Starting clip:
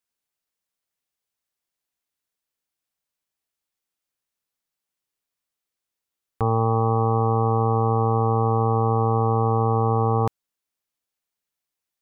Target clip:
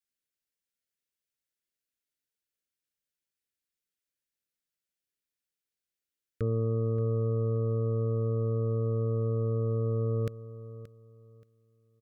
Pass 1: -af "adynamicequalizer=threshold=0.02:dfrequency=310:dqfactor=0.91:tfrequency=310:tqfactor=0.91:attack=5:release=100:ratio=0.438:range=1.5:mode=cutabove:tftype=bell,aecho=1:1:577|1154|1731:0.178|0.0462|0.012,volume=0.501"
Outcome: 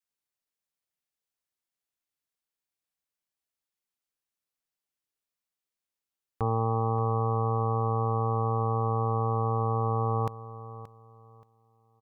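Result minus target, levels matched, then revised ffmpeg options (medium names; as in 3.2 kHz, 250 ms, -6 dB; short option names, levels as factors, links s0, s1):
1 kHz band +19.0 dB
-af "adynamicequalizer=threshold=0.02:dfrequency=310:dqfactor=0.91:tfrequency=310:tqfactor=0.91:attack=5:release=100:ratio=0.438:range=1.5:mode=cutabove:tftype=bell,asuperstop=centerf=890:order=8:qfactor=1.2,aecho=1:1:577|1154|1731:0.178|0.0462|0.012,volume=0.501"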